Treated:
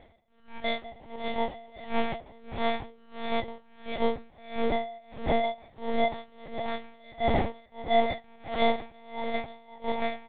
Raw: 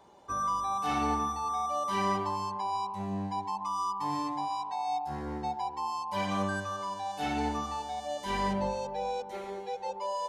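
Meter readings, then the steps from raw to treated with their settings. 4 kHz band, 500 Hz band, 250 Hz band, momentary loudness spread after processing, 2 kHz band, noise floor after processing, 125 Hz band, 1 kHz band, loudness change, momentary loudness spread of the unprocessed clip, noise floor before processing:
+4.0 dB, +7.0 dB, +1.5 dB, 15 LU, +5.0 dB, -57 dBFS, -1.5 dB, -3.0 dB, +1.5 dB, 6 LU, -43 dBFS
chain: low-pass 2.1 kHz 6 dB/octave; reverb removal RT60 1.1 s; high-pass 70 Hz 12 dB/octave; bass shelf 440 Hz -5 dB; in parallel at -1.5 dB: peak limiter -33.5 dBFS, peak gain reduction 11.5 dB; on the sum: level rider gain up to 5 dB; static phaser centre 370 Hz, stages 6; sample-and-hold 32×; feedback delay 546 ms, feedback 41%, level -4 dB; FDN reverb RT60 0.31 s, low-frequency decay 0.95×, high-frequency decay 0.7×, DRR 3 dB; monotone LPC vocoder at 8 kHz 230 Hz; logarithmic tremolo 1.5 Hz, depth 28 dB; trim +4.5 dB

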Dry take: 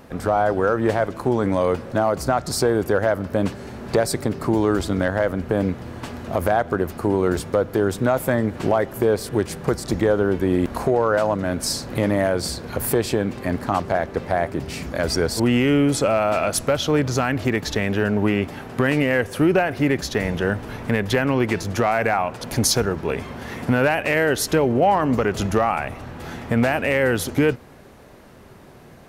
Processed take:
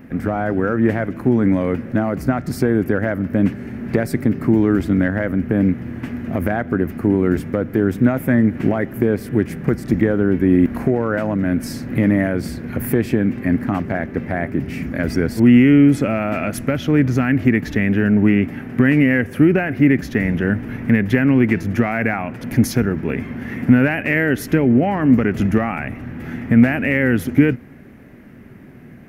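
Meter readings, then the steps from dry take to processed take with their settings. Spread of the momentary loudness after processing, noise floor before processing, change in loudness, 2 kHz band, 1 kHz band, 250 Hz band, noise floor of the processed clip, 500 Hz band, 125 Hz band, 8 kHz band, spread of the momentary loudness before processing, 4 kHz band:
9 LU, -45 dBFS, +3.5 dB, +2.5 dB, -5.0 dB, +7.5 dB, -40 dBFS, -1.5 dB, +5.5 dB, no reading, 7 LU, -8.5 dB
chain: graphic EQ 125/250/500/1000/2000/4000/8000 Hz +4/+10/-4/-8/+9/-11/-10 dB

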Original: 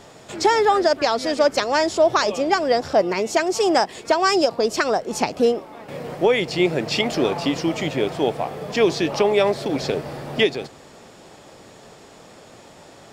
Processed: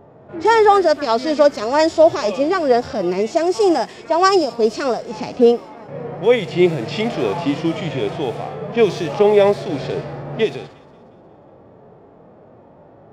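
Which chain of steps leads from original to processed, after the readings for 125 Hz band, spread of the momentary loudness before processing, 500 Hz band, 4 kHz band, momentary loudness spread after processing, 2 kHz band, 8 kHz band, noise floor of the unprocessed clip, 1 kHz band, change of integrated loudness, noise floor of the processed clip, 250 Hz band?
+4.5 dB, 8 LU, +4.0 dB, -2.5 dB, 12 LU, -1.0 dB, -4.5 dB, -46 dBFS, +2.5 dB, +3.0 dB, -46 dBFS, +3.5 dB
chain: level-controlled noise filter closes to 730 Hz, open at -16.5 dBFS; feedback echo behind a high-pass 179 ms, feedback 52%, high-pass 4.1 kHz, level -20 dB; harmonic-percussive split percussive -17 dB; trim +6 dB

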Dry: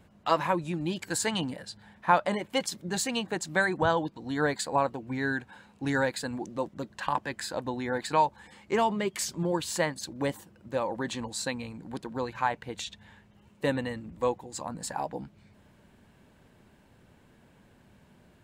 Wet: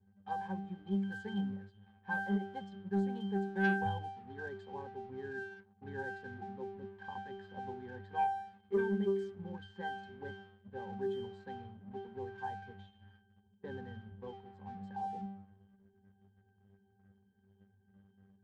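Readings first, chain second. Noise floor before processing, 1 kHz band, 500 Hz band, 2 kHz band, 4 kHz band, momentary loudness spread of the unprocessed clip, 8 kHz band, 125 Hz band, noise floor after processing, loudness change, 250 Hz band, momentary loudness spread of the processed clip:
-60 dBFS, -10.0 dB, -9.5 dB, -8.5 dB, -19.5 dB, 10 LU, under -35 dB, -6.5 dB, -70 dBFS, -9.0 dB, -6.0 dB, 15 LU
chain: pitch-class resonator G, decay 0.7 s; waveshaping leveller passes 1; level-controlled noise filter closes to 2.9 kHz, open at -41.5 dBFS; trim +7.5 dB

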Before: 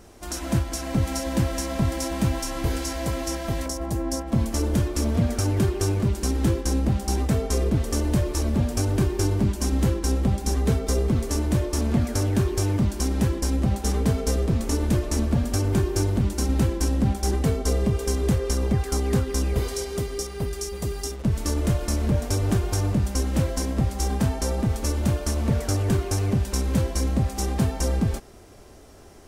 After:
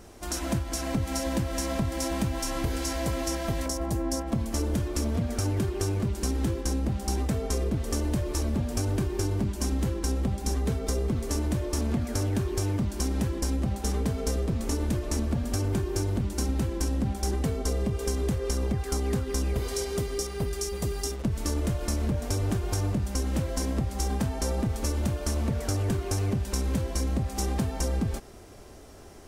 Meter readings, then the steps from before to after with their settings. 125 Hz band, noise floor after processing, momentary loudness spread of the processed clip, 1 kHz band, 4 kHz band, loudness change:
-5.0 dB, -37 dBFS, 2 LU, -3.5 dB, -3.0 dB, -4.5 dB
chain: compression, threshold -24 dBFS, peak gain reduction 8 dB

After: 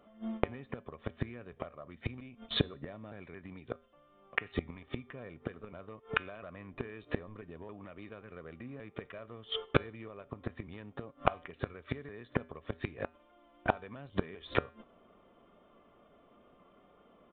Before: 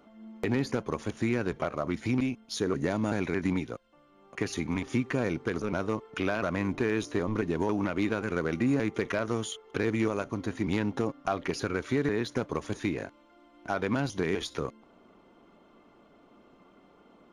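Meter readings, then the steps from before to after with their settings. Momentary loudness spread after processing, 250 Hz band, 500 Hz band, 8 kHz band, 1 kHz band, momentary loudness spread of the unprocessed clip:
14 LU, -13.0 dB, -9.0 dB, under -35 dB, -4.5 dB, 6 LU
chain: gate -47 dBFS, range -15 dB; comb 1.7 ms, depth 38%; inverted gate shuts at -23 dBFS, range -29 dB; feedback comb 81 Hz, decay 0.41 s, harmonics odd, mix 40%; wow and flutter 17 cents; resampled via 8 kHz; trim +15 dB

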